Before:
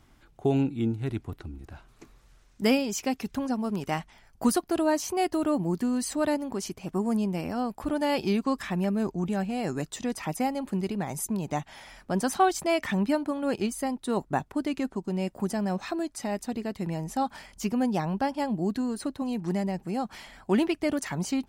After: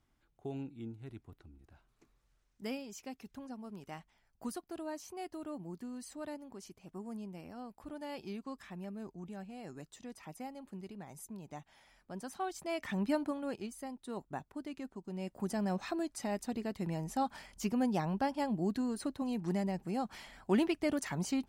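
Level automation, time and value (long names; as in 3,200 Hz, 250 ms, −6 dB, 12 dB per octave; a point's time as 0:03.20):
0:12.36 −17 dB
0:13.23 −5 dB
0:13.62 −14 dB
0:14.99 −14 dB
0:15.60 −5.5 dB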